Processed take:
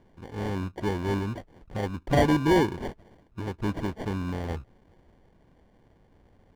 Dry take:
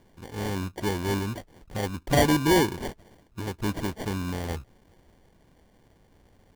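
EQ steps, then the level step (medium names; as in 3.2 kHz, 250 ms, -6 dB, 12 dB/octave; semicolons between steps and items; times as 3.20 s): low-pass 2 kHz 6 dB/octave; 0.0 dB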